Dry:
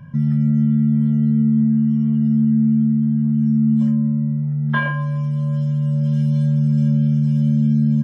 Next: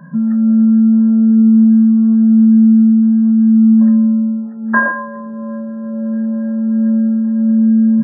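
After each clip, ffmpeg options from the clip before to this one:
-af "afftfilt=real='re*between(b*sr/4096,160,1900)':imag='im*between(b*sr/4096,160,1900)':win_size=4096:overlap=0.75,volume=8.5dB"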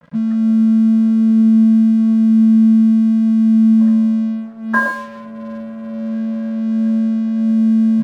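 -af "aeval=exprs='sgn(val(0))*max(abs(val(0))-0.0168,0)':c=same,volume=-2dB"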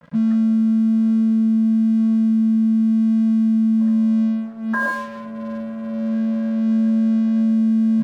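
-af "alimiter=limit=-13dB:level=0:latency=1:release=37"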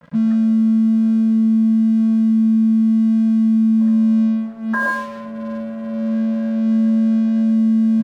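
-af "aecho=1:1:118:0.211,volume=1.5dB"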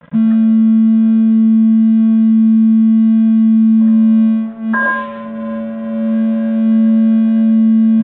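-af "aresample=8000,aresample=44100,volume=5dB"

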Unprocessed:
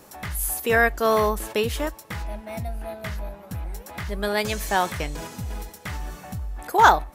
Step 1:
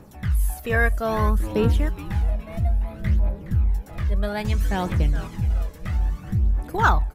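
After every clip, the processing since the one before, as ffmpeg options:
-filter_complex "[0:a]bass=f=250:g=12,treble=f=4k:g=-6,asplit=6[a][b][c][d][e][f];[b]adelay=417,afreqshift=-130,volume=-12.5dB[g];[c]adelay=834,afreqshift=-260,volume=-18.7dB[h];[d]adelay=1251,afreqshift=-390,volume=-24.9dB[i];[e]adelay=1668,afreqshift=-520,volume=-31.1dB[j];[f]adelay=2085,afreqshift=-650,volume=-37.3dB[k];[a][g][h][i][j][k]amix=inputs=6:normalize=0,aphaser=in_gain=1:out_gain=1:delay=1.9:decay=0.48:speed=0.61:type=triangular,volume=-5.5dB"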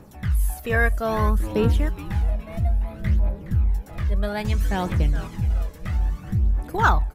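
-af anull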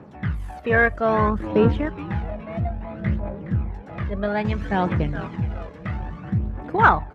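-af "aeval=exprs='if(lt(val(0),0),0.708*val(0),val(0))':c=same,highpass=120,lowpass=2.3k,volume=6dB"

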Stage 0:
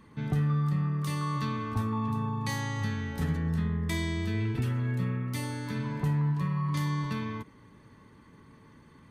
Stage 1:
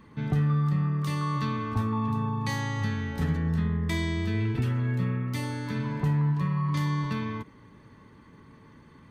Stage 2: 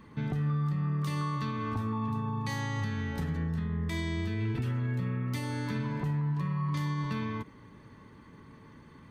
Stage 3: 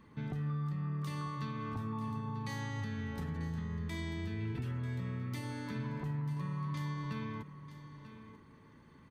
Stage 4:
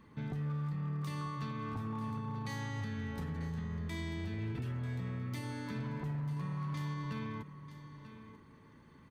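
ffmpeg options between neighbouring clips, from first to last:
-af "equalizer=f=11k:t=o:w=1.2:g=-7,volume=2.5dB"
-af "alimiter=limit=-24dB:level=0:latency=1:release=206"
-af "aecho=1:1:941:0.224,volume=-6.5dB"
-af "volume=33dB,asoftclip=hard,volume=-33dB"

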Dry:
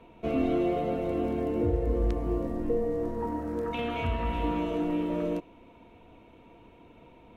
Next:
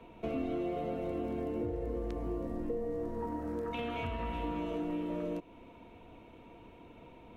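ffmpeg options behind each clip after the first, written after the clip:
-filter_complex "[0:a]acrossover=split=150[a][b];[a]alimiter=level_in=5.5dB:limit=-24dB:level=0:latency=1,volume=-5.5dB[c];[c][b]amix=inputs=2:normalize=0,acompressor=threshold=-36dB:ratio=2.5"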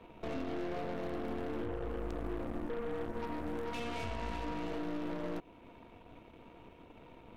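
-af "alimiter=level_in=6dB:limit=-24dB:level=0:latency=1:release=16,volume=-6dB,aeval=exprs='0.0316*(cos(1*acos(clip(val(0)/0.0316,-1,1)))-cos(1*PI/2))+0.00631*(cos(4*acos(clip(val(0)/0.0316,-1,1)))-cos(4*PI/2))+0.00251*(cos(8*acos(clip(val(0)/0.0316,-1,1)))-cos(8*PI/2))':c=same,volume=-2dB"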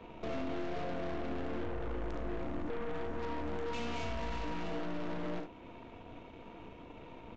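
-af "aecho=1:1:39|69:0.316|0.316,aresample=16000,asoftclip=type=tanh:threshold=-35dB,aresample=44100,volume=4dB"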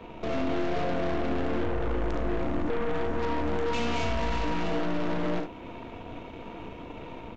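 -af "dynaudnorm=f=220:g=3:m=3dB,volume=6.5dB"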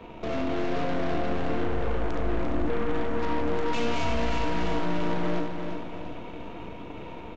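-af "aecho=1:1:346|692|1038|1384|1730|2076:0.447|0.21|0.0987|0.0464|0.0218|0.0102"

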